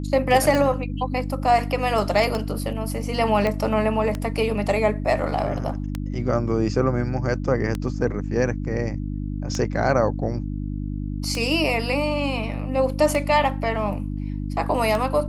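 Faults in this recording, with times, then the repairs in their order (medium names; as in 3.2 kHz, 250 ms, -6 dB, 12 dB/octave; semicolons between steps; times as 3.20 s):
hum 50 Hz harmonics 6 -28 dBFS
tick 33 1/3 rpm -12 dBFS
3.47 s: pop -12 dBFS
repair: de-click; de-hum 50 Hz, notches 6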